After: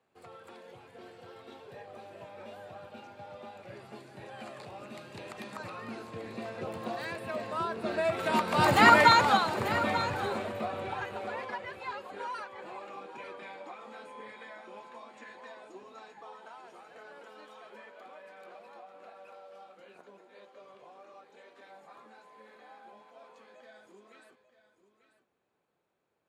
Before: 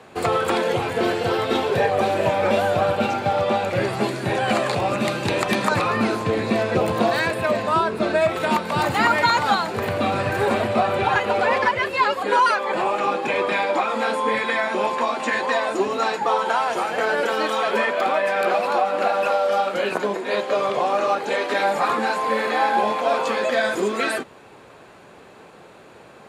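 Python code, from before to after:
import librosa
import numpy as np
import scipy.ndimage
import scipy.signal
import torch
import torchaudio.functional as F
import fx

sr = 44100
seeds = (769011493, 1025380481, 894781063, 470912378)

y = fx.doppler_pass(x, sr, speed_mps=7, closest_m=2.0, pass_at_s=8.91)
y = y + 10.0 ** (-12.5 / 20.0) * np.pad(y, (int(891 * sr / 1000.0), 0))[:len(y)]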